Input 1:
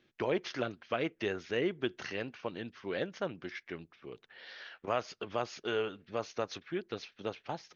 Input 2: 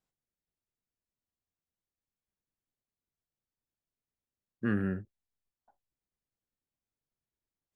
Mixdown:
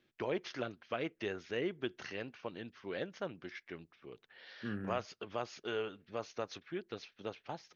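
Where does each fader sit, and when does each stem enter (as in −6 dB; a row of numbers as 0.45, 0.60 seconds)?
−4.5, −10.5 decibels; 0.00, 0.00 seconds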